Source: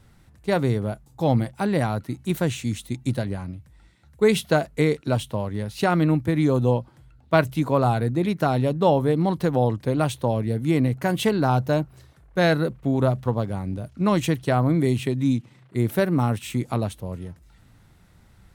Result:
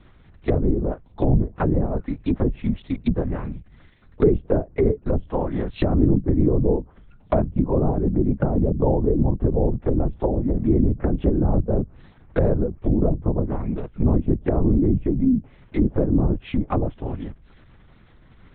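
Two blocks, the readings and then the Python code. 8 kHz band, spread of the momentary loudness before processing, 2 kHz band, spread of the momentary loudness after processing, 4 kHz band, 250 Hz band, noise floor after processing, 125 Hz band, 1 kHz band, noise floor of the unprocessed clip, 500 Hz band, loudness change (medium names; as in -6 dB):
under -40 dB, 9 LU, -12.0 dB, 8 LU, under -10 dB, +2.0 dB, -51 dBFS, +0.5 dB, -6.5 dB, -54 dBFS, -0.5 dB, +0.5 dB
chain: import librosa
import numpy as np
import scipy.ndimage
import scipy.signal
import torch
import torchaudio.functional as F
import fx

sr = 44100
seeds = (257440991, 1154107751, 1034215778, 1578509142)

y = fx.lpc_vocoder(x, sr, seeds[0], excitation='whisper', order=8)
y = fx.env_lowpass_down(y, sr, base_hz=410.0, full_db=-19.0)
y = F.gain(torch.from_numpy(y), 3.5).numpy()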